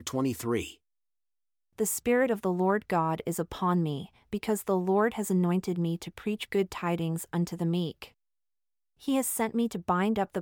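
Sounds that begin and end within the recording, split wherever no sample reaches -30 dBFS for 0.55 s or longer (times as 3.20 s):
1.79–8.04 s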